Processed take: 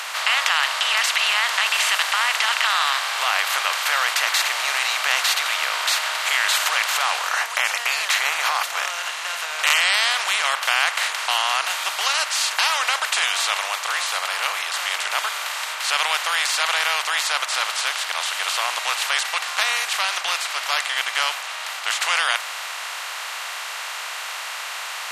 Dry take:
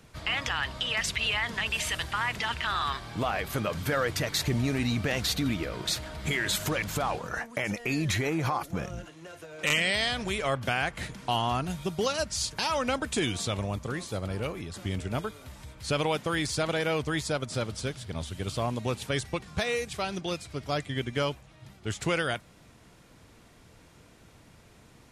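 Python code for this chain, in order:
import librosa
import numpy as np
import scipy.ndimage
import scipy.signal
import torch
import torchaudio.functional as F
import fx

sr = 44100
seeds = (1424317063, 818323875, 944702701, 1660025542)

y = fx.bin_compress(x, sr, power=0.4)
y = scipy.signal.sosfilt(scipy.signal.cheby2(4, 70, 190.0, 'highpass', fs=sr, output='sos'), y)
y = y * librosa.db_to_amplitude(3.5)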